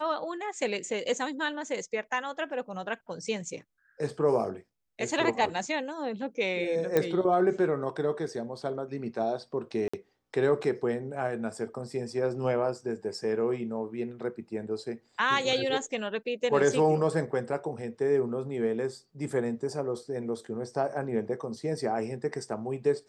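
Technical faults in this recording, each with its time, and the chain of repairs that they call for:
6.97 s: pop -12 dBFS
9.88–9.94 s: dropout 55 ms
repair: de-click; interpolate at 9.88 s, 55 ms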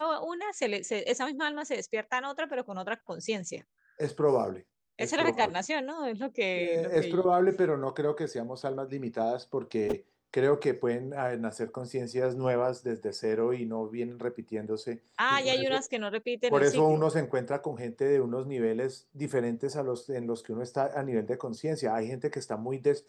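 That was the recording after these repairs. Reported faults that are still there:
nothing left

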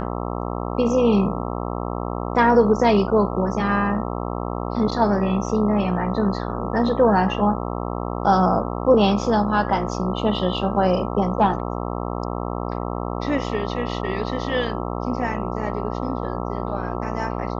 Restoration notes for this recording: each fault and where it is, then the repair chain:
buzz 60 Hz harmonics 22 -27 dBFS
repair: de-hum 60 Hz, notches 22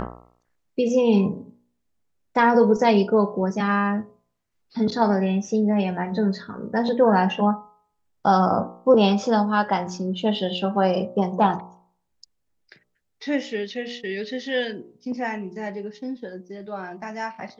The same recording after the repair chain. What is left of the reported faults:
nothing left

